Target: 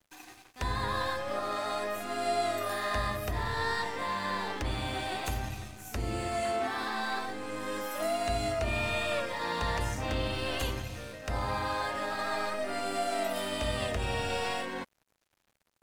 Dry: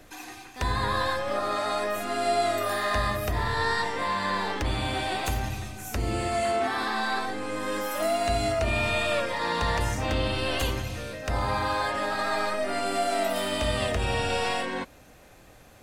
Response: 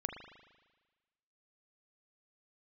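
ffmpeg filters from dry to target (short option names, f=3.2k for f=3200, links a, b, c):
-af "aeval=exprs='sgn(val(0))*max(abs(val(0))-0.00473,0)':c=same,volume=-4.5dB"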